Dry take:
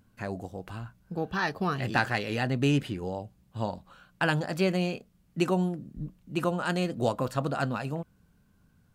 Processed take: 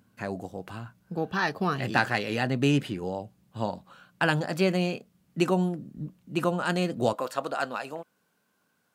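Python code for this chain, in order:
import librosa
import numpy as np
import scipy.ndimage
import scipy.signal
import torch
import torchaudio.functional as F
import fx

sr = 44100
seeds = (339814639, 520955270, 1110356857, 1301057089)

y = fx.highpass(x, sr, hz=fx.steps((0.0, 120.0), (7.13, 440.0)), slope=12)
y = y * 10.0 ** (2.0 / 20.0)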